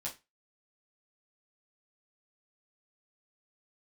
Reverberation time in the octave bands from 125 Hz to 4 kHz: 0.25, 0.25, 0.20, 0.25, 0.25, 0.25 seconds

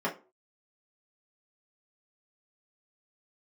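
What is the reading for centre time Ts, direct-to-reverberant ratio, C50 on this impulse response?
17 ms, −6.0 dB, 13.0 dB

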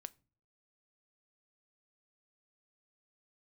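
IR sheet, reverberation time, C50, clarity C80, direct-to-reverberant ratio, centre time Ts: 0.50 s, 25.0 dB, 30.0 dB, 15.0 dB, 1 ms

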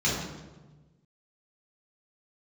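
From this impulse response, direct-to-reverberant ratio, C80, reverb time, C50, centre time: −7.5 dB, 4.0 dB, 1.2 s, 1.0 dB, 65 ms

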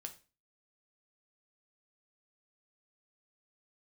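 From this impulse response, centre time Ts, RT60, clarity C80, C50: 8 ms, 0.35 s, 19.5 dB, 13.5 dB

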